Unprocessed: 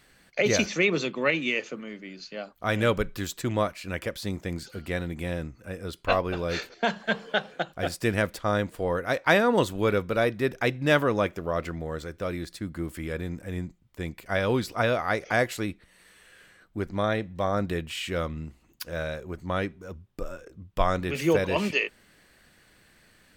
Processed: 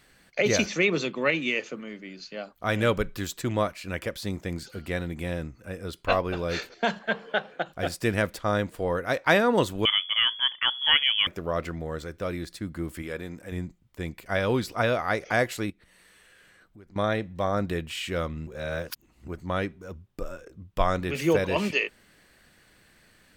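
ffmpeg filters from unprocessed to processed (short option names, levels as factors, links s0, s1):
-filter_complex "[0:a]asettb=1/sr,asplit=3[s0][s1][s2];[s0]atrim=end=6.994[s3];[s1]atrim=start=6.99:end=7.66,asetpts=PTS-STARTPTS,afade=t=in:d=0.004:c=qsin,afade=t=out:st=0.666:d=0.004:c=qsin,bass=f=250:g=-5,treble=f=4000:g=-11[s4];[s2]atrim=start=7.656[s5];[s3][s4]acrossfade=d=0.004:c1=hsin:c2=qsin[s6];[s6][s5]acrossfade=d=0.004:c1=qsin:c2=hsin,asettb=1/sr,asplit=3[s7][s8][s9];[s7]atrim=end=9.854[s10];[s8]atrim=start=9.85:end=11.27,asetpts=PTS-STARTPTS,afade=t=in:d=0.004:c=qsin,afade=t=out:st=1.416:d=0.004:c=qsin,lowpass=f=3000:t=q:w=0.5098,lowpass=f=3000:t=q:w=0.6013,lowpass=f=3000:t=q:w=0.9,lowpass=f=3000:t=q:w=2.563,afreqshift=-3500[s11];[s9]atrim=start=11.266[s12];[s10][s11]acrossfade=d=0.004:c1=hsin:c2=qsin[s13];[s13][s12]acrossfade=d=0.004:c1=qsin:c2=hsin,asettb=1/sr,asplit=3[s14][s15][s16];[s14]atrim=end=13.024[s17];[s15]atrim=start=13.02:end=13.52,asetpts=PTS-STARTPTS,afade=t=in:d=0.004:c=qsin,afade=t=out:st=0.496:d=0.004:c=qsin,lowshelf=f=160:g=-11.5[s18];[s16]atrim=start=13.516[s19];[s17][s18]acrossfade=d=0.004:c1=hsin:c2=qsin[s20];[s20][s19]acrossfade=d=0.004:c1=qsin:c2=hsin,asettb=1/sr,asplit=3[s21][s22][s23];[s21]atrim=end=15.704[s24];[s22]atrim=start=15.7:end=16.96,asetpts=PTS-STARTPTS,afade=t=in:d=0.004:c=qsin,afade=t=out:st=1.256:d=0.004:c=qsin,acompressor=threshold=0.00224:ratio=3:attack=3.2:release=140:knee=1:detection=peak[s25];[s23]atrim=start=16.956[s26];[s24][s25]acrossfade=d=0.004:c1=hsin:c2=qsin[s27];[s27][s26]acrossfade=d=0.004:c1=qsin:c2=hsin,asplit=3[s28][s29][s30];[s28]atrim=end=18.472[s31];[s29]atrim=start=18.468:end=19.282,asetpts=PTS-STARTPTS,areverse[s32];[s30]atrim=start=19.278[s33];[s31][s32]acrossfade=d=0.004:c1=hsin:c2=hsin[s34];[s34][s33]acrossfade=d=0.004:c1=hsin:c2=hsin"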